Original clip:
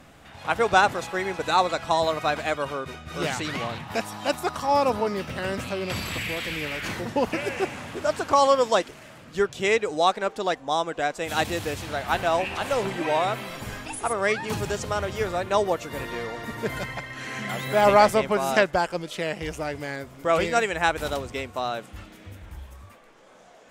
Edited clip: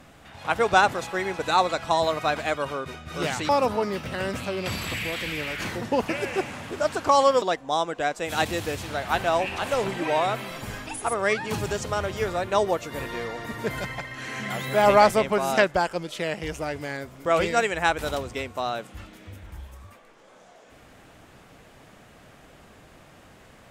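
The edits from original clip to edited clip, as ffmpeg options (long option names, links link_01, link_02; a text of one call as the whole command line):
ffmpeg -i in.wav -filter_complex "[0:a]asplit=3[link_01][link_02][link_03];[link_01]atrim=end=3.492[link_04];[link_02]atrim=start=4.728:end=8.662[link_05];[link_03]atrim=start=10.408[link_06];[link_04][link_05]acrossfade=duration=0.004:curve1=hsin:curve2=hsin[link_07];[link_07][link_06]acrossfade=duration=0.004:curve1=hsin:curve2=hsin" out.wav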